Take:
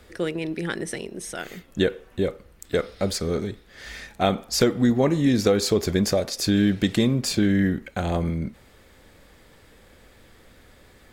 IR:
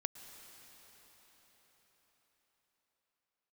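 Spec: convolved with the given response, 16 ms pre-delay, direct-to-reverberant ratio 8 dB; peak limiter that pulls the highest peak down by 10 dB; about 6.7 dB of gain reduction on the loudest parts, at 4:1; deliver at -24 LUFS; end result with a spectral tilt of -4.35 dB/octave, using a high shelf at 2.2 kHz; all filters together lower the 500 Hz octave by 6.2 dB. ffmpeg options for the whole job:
-filter_complex "[0:a]equalizer=f=500:t=o:g=-8,highshelf=f=2200:g=3,acompressor=threshold=0.0562:ratio=4,alimiter=limit=0.0668:level=0:latency=1,asplit=2[s0][s1];[1:a]atrim=start_sample=2205,adelay=16[s2];[s1][s2]afir=irnorm=-1:irlink=0,volume=0.447[s3];[s0][s3]amix=inputs=2:normalize=0,volume=2.82"

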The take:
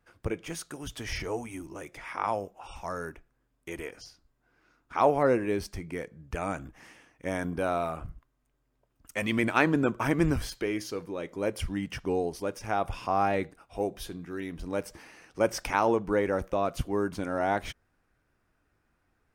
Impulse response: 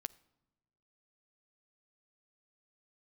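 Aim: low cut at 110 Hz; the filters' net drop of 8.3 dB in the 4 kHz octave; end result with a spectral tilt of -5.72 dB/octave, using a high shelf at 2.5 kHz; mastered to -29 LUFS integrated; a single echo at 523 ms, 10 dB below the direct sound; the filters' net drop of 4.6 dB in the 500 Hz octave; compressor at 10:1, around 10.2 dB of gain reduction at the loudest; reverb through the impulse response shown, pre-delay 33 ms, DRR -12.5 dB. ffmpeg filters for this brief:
-filter_complex "[0:a]highpass=110,equalizer=f=500:t=o:g=-5.5,highshelf=f=2500:g=-3.5,equalizer=f=4000:t=o:g=-8.5,acompressor=threshold=0.0282:ratio=10,aecho=1:1:523:0.316,asplit=2[s0][s1];[1:a]atrim=start_sample=2205,adelay=33[s2];[s1][s2]afir=irnorm=-1:irlink=0,volume=5.96[s3];[s0][s3]amix=inputs=2:normalize=0,volume=0.75"

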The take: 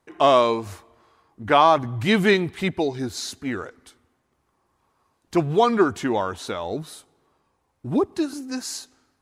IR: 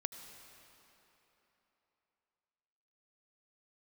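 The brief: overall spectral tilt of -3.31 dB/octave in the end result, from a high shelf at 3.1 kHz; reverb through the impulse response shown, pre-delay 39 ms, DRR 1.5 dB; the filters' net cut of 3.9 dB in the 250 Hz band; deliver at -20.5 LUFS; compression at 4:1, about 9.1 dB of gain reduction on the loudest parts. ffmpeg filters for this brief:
-filter_complex "[0:a]equalizer=f=250:t=o:g=-5.5,highshelf=f=3100:g=9,acompressor=threshold=0.0794:ratio=4,asplit=2[s0][s1];[1:a]atrim=start_sample=2205,adelay=39[s2];[s1][s2]afir=irnorm=-1:irlink=0,volume=0.891[s3];[s0][s3]amix=inputs=2:normalize=0,volume=1.78"

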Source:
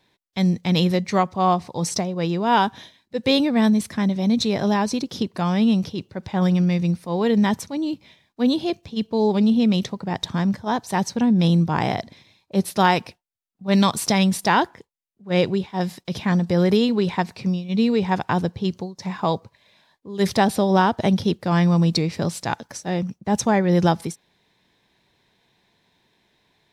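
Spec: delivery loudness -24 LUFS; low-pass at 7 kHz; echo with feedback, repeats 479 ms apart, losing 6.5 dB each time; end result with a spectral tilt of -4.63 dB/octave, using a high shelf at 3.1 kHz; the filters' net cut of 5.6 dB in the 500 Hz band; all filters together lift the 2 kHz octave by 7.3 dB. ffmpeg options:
-af "lowpass=7000,equalizer=f=500:t=o:g=-8,equalizer=f=2000:t=o:g=7.5,highshelf=f=3100:g=6.5,aecho=1:1:479|958|1437|1916|2395|2874:0.473|0.222|0.105|0.0491|0.0231|0.0109,volume=0.668"

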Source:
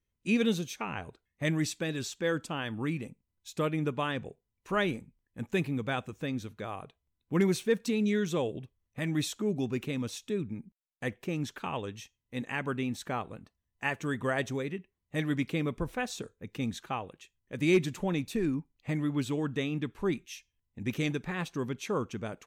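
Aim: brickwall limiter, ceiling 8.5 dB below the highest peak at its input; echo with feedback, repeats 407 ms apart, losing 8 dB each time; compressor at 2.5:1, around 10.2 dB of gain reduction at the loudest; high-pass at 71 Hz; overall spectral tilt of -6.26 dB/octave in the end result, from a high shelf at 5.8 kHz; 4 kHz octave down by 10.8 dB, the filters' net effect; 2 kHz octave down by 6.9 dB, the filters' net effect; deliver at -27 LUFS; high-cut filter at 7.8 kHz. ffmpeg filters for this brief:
-af "highpass=71,lowpass=7800,equalizer=f=2000:t=o:g=-5.5,equalizer=f=4000:t=o:g=-8.5,highshelf=f=5800:g=-9,acompressor=threshold=0.0141:ratio=2.5,alimiter=level_in=2.99:limit=0.0631:level=0:latency=1,volume=0.335,aecho=1:1:407|814|1221|1628|2035:0.398|0.159|0.0637|0.0255|0.0102,volume=6.31"

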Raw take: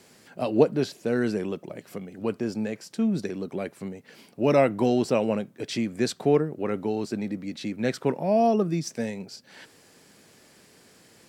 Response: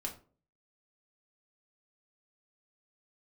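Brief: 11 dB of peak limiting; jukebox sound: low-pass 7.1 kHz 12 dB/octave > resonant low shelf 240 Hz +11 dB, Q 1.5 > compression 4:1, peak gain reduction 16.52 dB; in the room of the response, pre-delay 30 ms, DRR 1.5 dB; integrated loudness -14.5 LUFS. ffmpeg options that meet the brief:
-filter_complex "[0:a]alimiter=limit=0.126:level=0:latency=1,asplit=2[s0][s1];[1:a]atrim=start_sample=2205,adelay=30[s2];[s1][s2]afir=irnorm=-1:irlink=0,volume=0.841[s3];[s0][s3]amix=inputs=2:normalize=0,lowpass=7100,lowshelf=f=240:t=q:w=1.5:g=11,acompressor=threshold=0.0398:ratio=4,volume=6.68"

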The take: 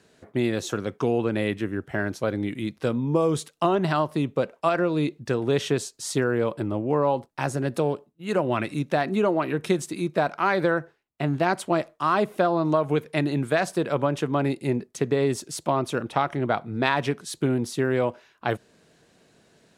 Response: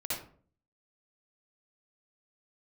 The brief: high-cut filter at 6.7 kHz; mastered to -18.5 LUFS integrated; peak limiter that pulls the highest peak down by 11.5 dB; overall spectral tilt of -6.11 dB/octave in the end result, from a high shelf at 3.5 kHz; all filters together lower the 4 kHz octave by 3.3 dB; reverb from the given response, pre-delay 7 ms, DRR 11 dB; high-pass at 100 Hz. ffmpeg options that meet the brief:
-filter_complex "[0:a]highpass=100,lowpass=6700,highshelf=f=3500:g=3.5,equalizer=f=4000:t=o:g=-6,alimiter=limit=0.133:level=0:latency=1,asplit=2[s0][s1];[1:a]atrim=start_sample=2205,adelay=7[s2];[s1][s2]afir=irnorm=-1:irlink=0,volume=0.178[s3];[s0][s3]amix=inputs=2:normalize=0,volume=3.16"

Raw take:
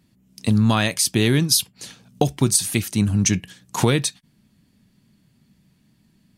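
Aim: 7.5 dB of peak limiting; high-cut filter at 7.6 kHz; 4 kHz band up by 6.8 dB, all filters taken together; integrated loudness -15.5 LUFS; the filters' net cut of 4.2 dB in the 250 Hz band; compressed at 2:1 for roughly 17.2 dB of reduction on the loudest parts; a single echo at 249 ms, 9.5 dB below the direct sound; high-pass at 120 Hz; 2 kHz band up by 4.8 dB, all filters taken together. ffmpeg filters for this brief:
-af "highpass=120,lowpass=7600,equalizer=f=250:t=o:g=-5,equalizer=f=2000:t=o:g=3.5,equalizer=f=4000:t=o:g=8,acompressor=threshold=0.00631:ratio=2,alimiter=limit=0.0708:level=0:latency=1,aecho=1:1:249:0.335,volume=11.2"

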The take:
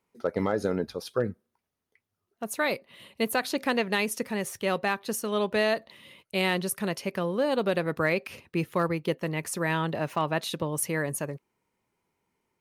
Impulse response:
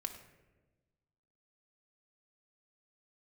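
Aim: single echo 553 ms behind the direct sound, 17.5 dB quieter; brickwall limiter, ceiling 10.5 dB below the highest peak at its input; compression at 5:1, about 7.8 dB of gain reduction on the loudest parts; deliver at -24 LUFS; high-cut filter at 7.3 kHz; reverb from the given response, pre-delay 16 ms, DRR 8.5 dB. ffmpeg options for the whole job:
-filter_complex "[0:a]lowpass=7300,acompressor=threshold=0.0316:ratio=5,alimiter=level_in=1.78:limit=0.0631:level=0:latency=1,volume=0.562,aecho=1:1:553:0.133,asplit=2[s0][s1];[1:a]atrim=start_sample=2205,adelay=16[s2];[s1][s2]afir=irnorm=-1:irlink=0,volume=0.422[s3];[s0][s3]amix=inputs=2:normalize=0,volume=5.62"

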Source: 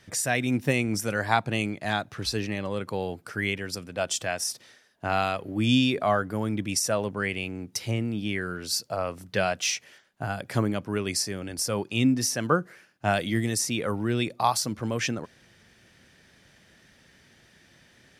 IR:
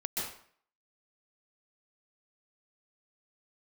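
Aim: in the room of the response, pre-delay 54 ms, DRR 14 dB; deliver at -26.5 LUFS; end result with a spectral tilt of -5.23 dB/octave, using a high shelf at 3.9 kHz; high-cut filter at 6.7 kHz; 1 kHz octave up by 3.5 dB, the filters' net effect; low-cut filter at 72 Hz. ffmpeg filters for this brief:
-filter_complex "[0:a]highpass=72,lowpass=6700,equalizer=f=1000:t=o:g=5.5,highshelf=f=3900:g=-7.5,asplit=2[s0][s1];[1:a]atrim=start_sample=2205,adelay=54[s2];[s1][s2]afir=irnorm=-1:irlink=0,volume=0.126[s3];[s0][s3]amix=inputs=2:normalize=0,volume=1.12"

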